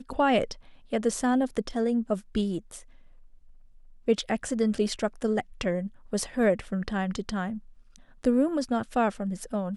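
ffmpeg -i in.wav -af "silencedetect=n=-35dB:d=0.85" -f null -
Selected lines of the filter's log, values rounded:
silence_start: 2.79
silence_end: 4.08 | silence_duration: 1.29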